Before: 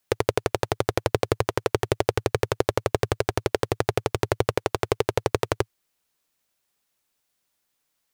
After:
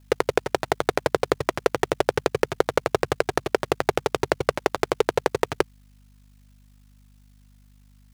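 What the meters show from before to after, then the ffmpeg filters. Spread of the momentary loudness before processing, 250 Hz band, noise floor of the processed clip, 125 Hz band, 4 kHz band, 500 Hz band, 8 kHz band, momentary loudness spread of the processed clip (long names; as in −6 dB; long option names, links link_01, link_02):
2 LU, +0.5 dB, −54 dBFS, −6.5 dB, +0.5 dB, +1.5 dB, −0.5 dB, 3 LU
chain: -filter_complex "[0:a]aeval=exprs='val(0)*sin(2*PI*26*n/s)':channel_layout=same,asplit=2[link_01][link_02];[link_02]highpass=frequency=720:poles=1,volume=18dB,asoftclip=type=tanh:threshold=-3dB[link_03];[link_01][link_03]amix=inputs=2:normalize=0,lowpass=frequency=7800:poles=1,volume=-6dB,aeval=exprs='val(0)+0.00224*(sin(2*PI*50*n/s)+sin(2*PI*2*50*n/s)/2+sin(2*PI*3*50*n/s)/3+sin(2*PI*4*50*n/s)/4+sin(2*PI*5*50*n/s)/5)':channel_layout=same"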